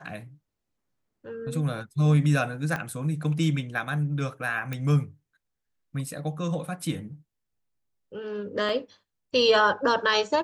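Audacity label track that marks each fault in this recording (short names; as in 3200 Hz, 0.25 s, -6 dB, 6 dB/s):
2.760000	2.760000	pop -17 dBFS
4.730000	4.730000	pop -18 dBFS
8.690000	8.690000	gap 3.2 ms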